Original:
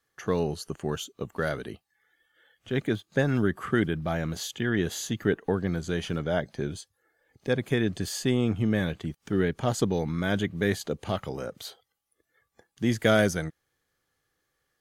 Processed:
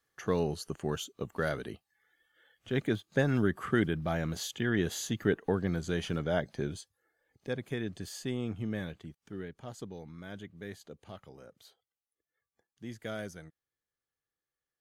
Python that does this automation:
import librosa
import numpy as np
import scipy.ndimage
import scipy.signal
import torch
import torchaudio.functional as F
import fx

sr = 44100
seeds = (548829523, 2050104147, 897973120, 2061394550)

y = fx.gain(x, sr, db=fx.line((6.61, -3.0), (7.67, -10.0), (8.79, -10.0), (9.56, -17.5)))